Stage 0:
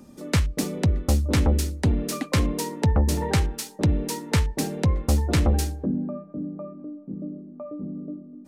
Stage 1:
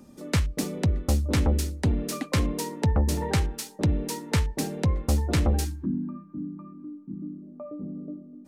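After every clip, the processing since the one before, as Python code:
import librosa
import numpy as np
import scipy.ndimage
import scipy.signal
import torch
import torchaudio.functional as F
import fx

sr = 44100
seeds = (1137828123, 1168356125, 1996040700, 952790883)

y = fx.spec_box(x, sr, start_s=5.65, length_s=1.77, low_hz=380.0, high_hz=870.0, gain_db=-22)
y = y * librosa.db_to_amplitude(-2.5)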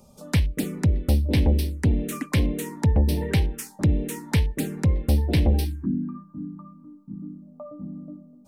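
y = fx.env_phaser(x, sr, low_hz=280.0, high_hz=1300.0, full_db=-22.0)
y = y * librosa.db_to_amplitude(3.5)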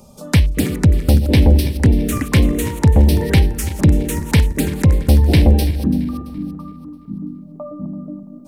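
y = fx.reverse_delay_fb(x, sr, ms=168, feedback_pct=62, wet_db=-12.5)
y = y * librosa.db_to_amplitude(8.5)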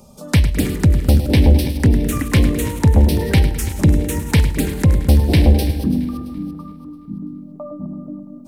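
y = fx.echo_feedback(x, sr, ms=105, feedback_pct=51, wet_db=-12)
y = y * librosa.db_to_amplitude(-1.0)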